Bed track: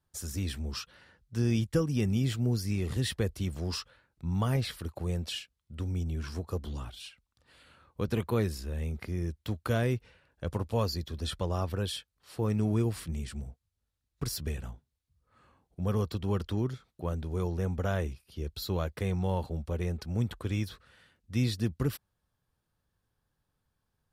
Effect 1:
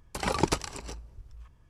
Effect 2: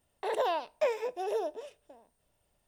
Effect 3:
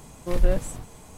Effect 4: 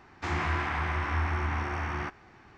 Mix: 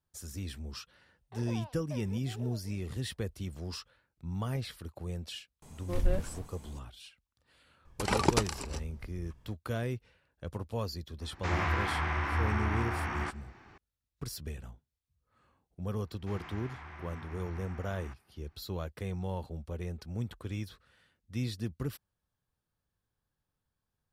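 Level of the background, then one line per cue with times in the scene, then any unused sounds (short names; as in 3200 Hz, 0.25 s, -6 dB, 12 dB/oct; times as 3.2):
bed track -6 dB
1.09 add 2 -17 dB
5.62 add 3 -8 dB
7.85 add 1 -0.5 dB
11.21 add 4 -1.5 dB
16.04 add 4 -17 dB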